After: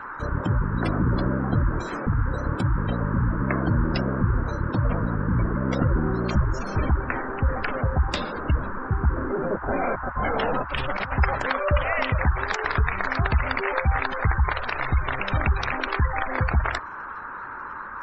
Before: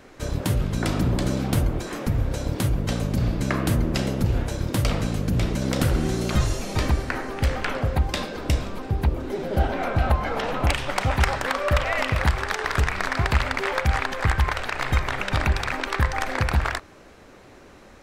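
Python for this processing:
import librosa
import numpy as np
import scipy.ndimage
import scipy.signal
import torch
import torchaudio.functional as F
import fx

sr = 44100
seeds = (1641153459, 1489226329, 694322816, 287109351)

y = fx.over_compress(x, sr, threshold_db=-26.0, ratio=-0.5, at=(9.17, 11.12))
y = fx.spec_gate(y, sr, threshold_db=-20, keep='strong')
y = fx.dmg_noise_band(y, sr, seeds[0], low_hz=890.0, high_hz=1600.0, level_db=-36.0)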